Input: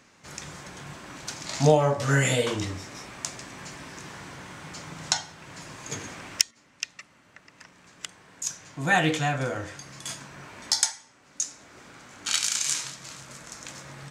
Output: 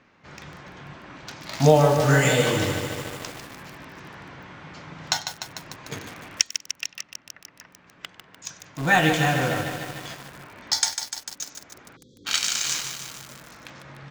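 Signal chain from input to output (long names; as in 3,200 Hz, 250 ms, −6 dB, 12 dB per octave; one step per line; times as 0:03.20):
low-pass filter 7,500 Hz 12 dB per octave
low-pass that shuts in the quiet parts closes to 2,900 Hz, open at −19.5 dBFS
feedback echo with a high-pass in the loop 97 ms, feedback 47%, high-pass 1,000 Hz, level −18.5 dB
in parallel at −7.5 dB: bit reduction 5 bits
on the sum: time-frequency box erased 0:11.96–0:12.25, 550–3,200 Hz
feedback echo at a low word length 149 ms, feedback 80%, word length 6 bits, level −7.5 dB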